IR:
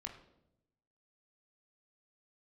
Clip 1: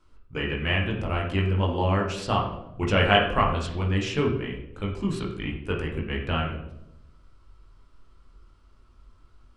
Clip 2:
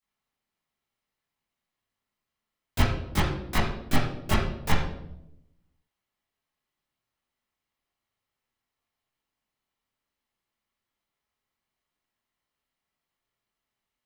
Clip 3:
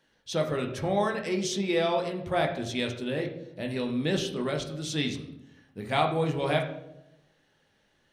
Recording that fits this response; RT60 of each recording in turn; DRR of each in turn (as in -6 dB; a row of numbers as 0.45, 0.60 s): 3; 0.85, 0.80, 0.85 s; -3.0, -11.0, 1.5 dB